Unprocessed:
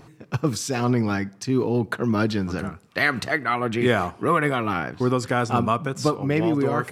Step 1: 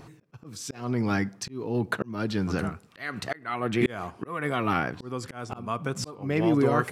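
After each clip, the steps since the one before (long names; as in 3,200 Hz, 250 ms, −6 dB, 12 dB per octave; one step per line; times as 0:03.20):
volume swells 492 ms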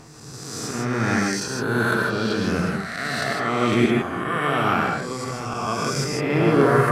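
peak hold with a rise ahead of every peak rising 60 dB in 1.60 s
reverb whose tail is shaped and stops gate 180 ms rising, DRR 0 dB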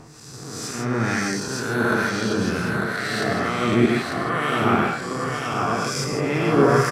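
two-band tremolo in antiphase 2.1 Hz, depth 50%, crossover 1,500 Hz
single-tap delay 896 ms −5 dB
level +1.5 dB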